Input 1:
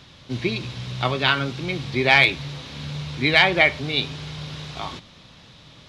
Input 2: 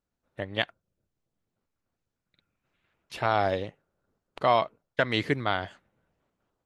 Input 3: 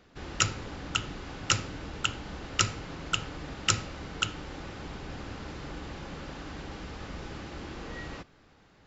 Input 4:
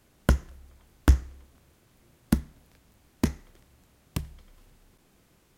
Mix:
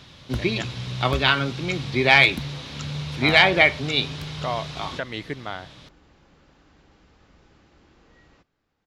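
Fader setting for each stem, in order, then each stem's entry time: +0.5, -5.5, -16.0, -10.5 dB; 0.00, 0.00, 0.20, 0.05 s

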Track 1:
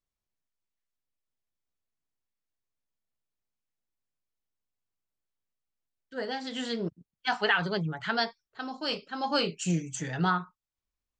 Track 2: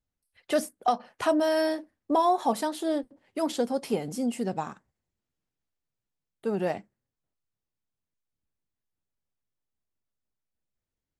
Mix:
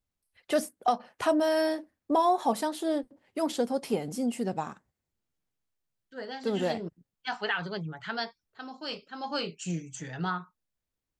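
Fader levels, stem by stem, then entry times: -5.0, -1.0 dB; 0.00, 0.00 s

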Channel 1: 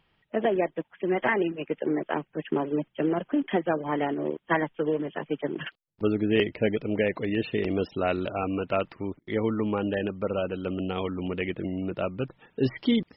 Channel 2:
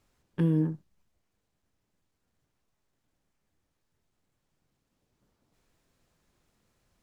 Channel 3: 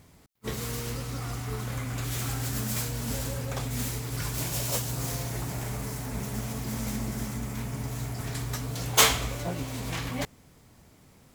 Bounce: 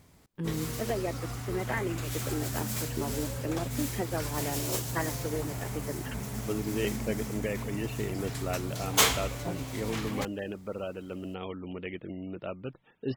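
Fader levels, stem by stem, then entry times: -8.0, -9.0, -3.0 dB; 0.45, 0.00, 0.00 s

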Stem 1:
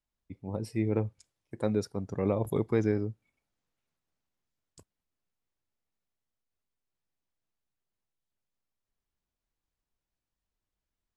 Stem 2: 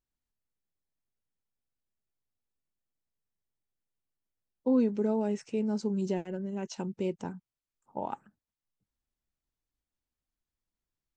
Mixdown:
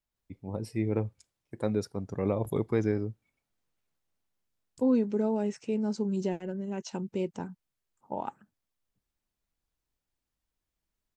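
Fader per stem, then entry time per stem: -0.5, +0.5 dB; 0.00, 0.15 s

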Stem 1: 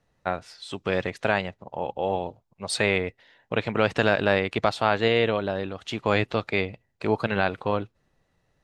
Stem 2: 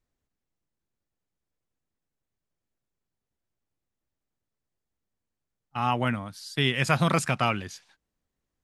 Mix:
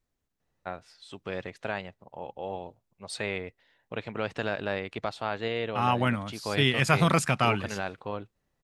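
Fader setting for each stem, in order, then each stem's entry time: -9.5, +0.5 dB; 0.40, 0.00 s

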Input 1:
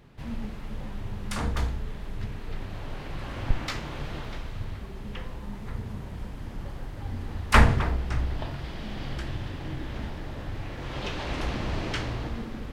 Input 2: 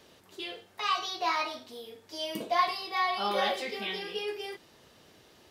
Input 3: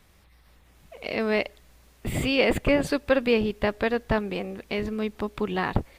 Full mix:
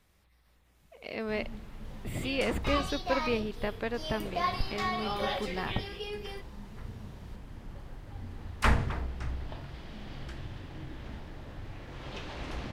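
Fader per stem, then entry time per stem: -8.0, -4.5, -9.0 dB; 1.10, 1.85, 0.00 s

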